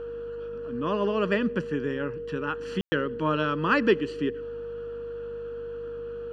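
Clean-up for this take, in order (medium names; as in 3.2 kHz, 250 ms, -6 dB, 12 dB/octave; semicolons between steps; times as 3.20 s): de-hum 50.4 Hz, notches 5; band-stop 470 Hz, Q 30; room tone fill 2.81–2.92 s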